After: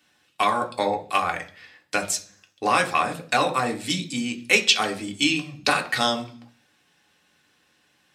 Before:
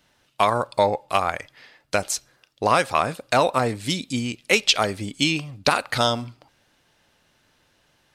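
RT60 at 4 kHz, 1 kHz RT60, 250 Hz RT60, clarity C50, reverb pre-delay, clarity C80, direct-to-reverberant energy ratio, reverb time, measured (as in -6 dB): 0.50 s, 0.40 s, 0.65 s, 14.5 dB, 3 ms, 19.0 dB, 2.0 dB, 0.45 s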